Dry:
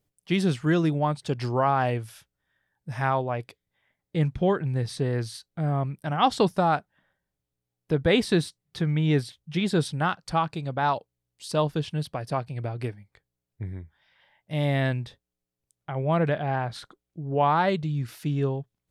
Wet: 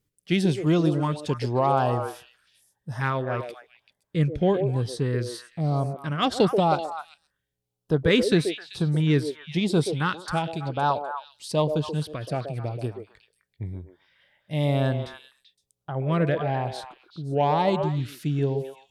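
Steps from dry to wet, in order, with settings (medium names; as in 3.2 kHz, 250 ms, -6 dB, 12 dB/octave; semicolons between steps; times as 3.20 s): Chebyshev shaper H 7 -35 dB, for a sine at -8 dBFS; LFO notch saw up 1 Hz 640–2500 Hz; repeats whose band climbs or falls 129 ms, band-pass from 470 Hz, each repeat 1.4 oct, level -3.5 dB; trim +2 dB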